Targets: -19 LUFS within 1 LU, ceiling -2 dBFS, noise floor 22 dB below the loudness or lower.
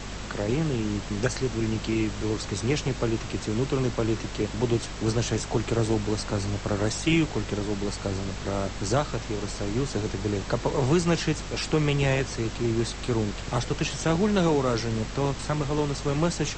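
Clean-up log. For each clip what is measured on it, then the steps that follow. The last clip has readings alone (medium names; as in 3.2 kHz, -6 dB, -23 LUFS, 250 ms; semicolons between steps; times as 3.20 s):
hum 50 Hz; highest harmonic 250 Hz; hum level -37 dBFS; noise floor -36 dBFS; noise floor target -49 dBFS; loudness -27.0 LUFS; peak level -10.5 dBFS; loudness target -19.0 LUFS
-> de-hum 50 Hz, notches 5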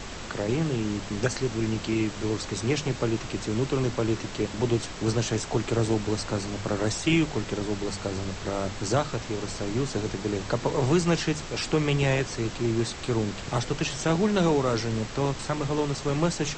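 hum not found; noise floor -38 dBFS; noise floor target -50 dBFS
-> noise print and reduce 12 dB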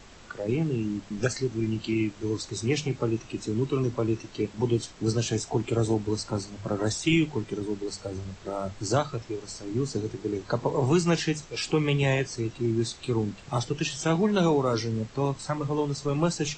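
noise floor -48 dBFS; noise floor target -51 dBFS
-> noise print and reduce 6 dB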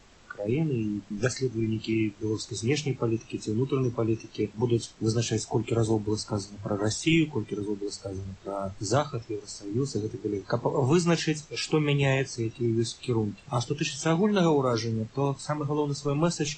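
noise floor -52 dBFS; loudness -28.5 LUFS; peak level -12.0 dBFS; loudness target -19.0 LUFS
-> trim +9.5 dB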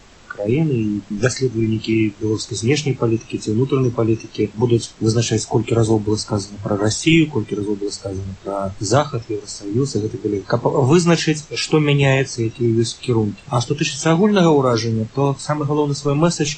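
loudness -19.0 LUFS; peak level -2.5 dBFS; noise floor -43 dBFS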